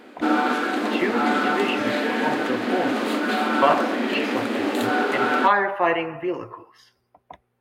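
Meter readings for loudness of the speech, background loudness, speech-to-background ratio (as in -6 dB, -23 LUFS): -25.5 LUFS, -23.0 LUFS, -2.5 dB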